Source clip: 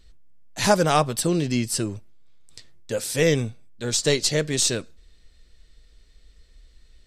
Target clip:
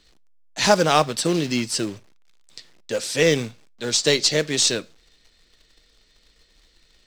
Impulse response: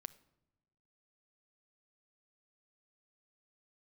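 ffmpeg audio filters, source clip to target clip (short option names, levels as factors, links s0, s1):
-filter_complex "[0:a]acrusher=bits=4:mode=log:mix=0:aa=0.000001,acrossover=split=160 6700:gain=0.251 1 0.126[s0][s1][s2];[s0][s1][s2]amix=inputs=3:normalize=0,asplit=2[s3][s4];[1:a]atrim=start_sample=2205,atrim=end_sample=3969,highshelf=f=2200:g=11[s5];[s4][s5]afir=irnorm=-1:irlink=0,volume=1.19[s6];[s3][s6]amix=inputs=2:normalize=0,volume=0.708"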